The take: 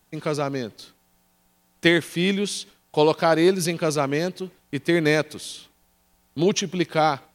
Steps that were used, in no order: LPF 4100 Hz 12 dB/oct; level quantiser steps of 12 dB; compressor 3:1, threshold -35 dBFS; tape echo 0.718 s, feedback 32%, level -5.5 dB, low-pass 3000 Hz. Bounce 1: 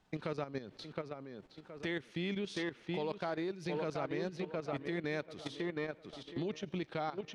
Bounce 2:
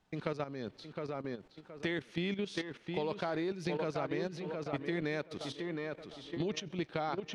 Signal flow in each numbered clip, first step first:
tape echo > compressor > LPF > level quantiser; tape echo > level quantiser > compressor > LPF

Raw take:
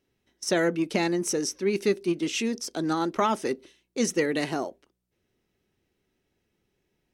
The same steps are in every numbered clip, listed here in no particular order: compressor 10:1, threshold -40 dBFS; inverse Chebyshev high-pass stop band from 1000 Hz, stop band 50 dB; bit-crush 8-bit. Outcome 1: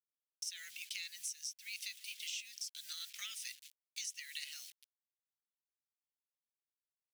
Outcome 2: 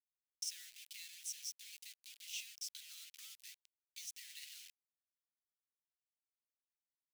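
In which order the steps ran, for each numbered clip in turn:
bit-crush > inverse Chebyshev high-pass > compressor; compressor > bit-crush > inverse Chebyshev high-pass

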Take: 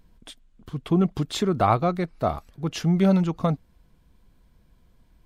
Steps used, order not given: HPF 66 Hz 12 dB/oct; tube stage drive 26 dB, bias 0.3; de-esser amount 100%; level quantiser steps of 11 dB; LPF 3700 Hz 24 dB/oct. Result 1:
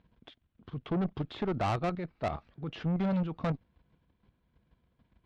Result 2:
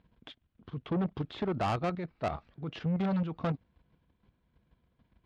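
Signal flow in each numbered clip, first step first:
de-esser > LPF > level quantiser > HPF > tube stage; level quantiser > de-esser > LPF > tube stage > HPF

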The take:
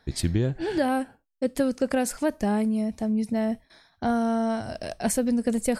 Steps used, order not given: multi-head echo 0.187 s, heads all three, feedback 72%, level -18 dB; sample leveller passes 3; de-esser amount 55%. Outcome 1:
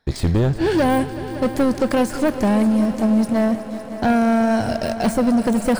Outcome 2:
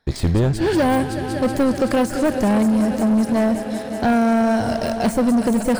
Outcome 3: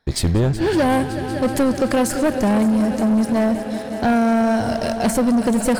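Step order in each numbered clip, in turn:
sample leveller > de-esser > multi-head echo; multi-head echo > sample leveller > de-esser; de-esser > multi-head echo > sample leveller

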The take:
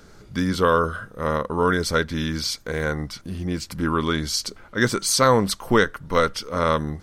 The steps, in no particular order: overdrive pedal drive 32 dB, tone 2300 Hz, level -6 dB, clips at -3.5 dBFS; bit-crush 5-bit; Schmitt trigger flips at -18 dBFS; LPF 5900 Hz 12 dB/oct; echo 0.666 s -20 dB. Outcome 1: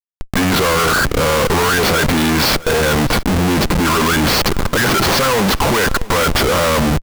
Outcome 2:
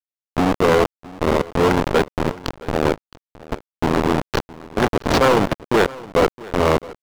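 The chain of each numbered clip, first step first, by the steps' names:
overdrive pedal > bit-crush > LPF > Schmitt trigger > echo; LPF > Schmitt trigger > bit-crush > overdrive pedal > echo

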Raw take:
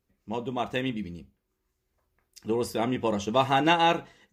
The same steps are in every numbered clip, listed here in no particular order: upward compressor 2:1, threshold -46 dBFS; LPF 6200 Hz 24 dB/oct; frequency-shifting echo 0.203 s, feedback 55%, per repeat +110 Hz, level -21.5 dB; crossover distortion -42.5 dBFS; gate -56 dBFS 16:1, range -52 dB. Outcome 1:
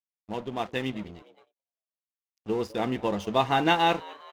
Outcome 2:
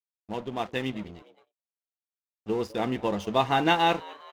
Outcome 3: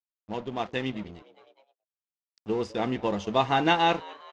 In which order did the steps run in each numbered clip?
LPF > crossover distortion > frequency-shifting echo > gate > upward compressor; upward compressor > LPF > crossover distortion > frequency-shifting echo > gate; crossover distortion > frequency-shifting echo > upward compressor > LPF > gate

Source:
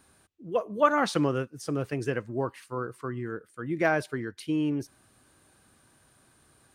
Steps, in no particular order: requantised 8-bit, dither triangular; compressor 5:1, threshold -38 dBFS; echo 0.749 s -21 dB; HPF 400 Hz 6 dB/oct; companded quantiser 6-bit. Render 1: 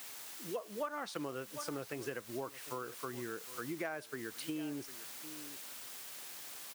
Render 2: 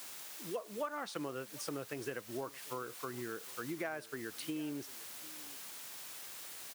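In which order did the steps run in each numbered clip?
companded quantiser > echo > requantised > HPF > compressor; companded quantiser > requantised > HPF > compressor > echo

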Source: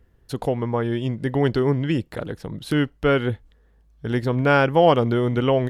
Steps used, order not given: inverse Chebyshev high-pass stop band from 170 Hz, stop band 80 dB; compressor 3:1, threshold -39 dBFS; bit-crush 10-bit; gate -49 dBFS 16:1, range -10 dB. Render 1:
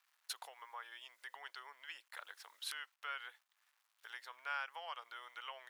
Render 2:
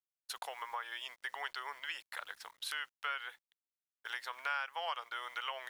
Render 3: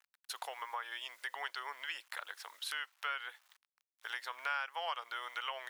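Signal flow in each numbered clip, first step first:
bit-crush > compressor > gate > inverse Chebyshev high-pass; inverse Chebyshev high-pass > bit-crush > compressor > gate; gate > bit-crush > inverse Chebyshev high-pass > compressor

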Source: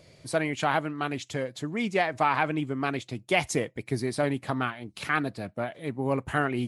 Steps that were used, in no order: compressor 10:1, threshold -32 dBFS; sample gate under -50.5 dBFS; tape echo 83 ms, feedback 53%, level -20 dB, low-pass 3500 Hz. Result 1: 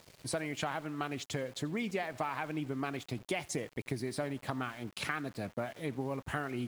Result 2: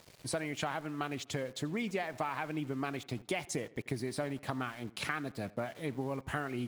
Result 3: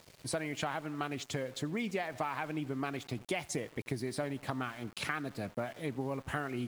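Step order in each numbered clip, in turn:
compressor > tape echo > sample gate; compressor > sample gate > tape echo; tape echo > compressor > sample gate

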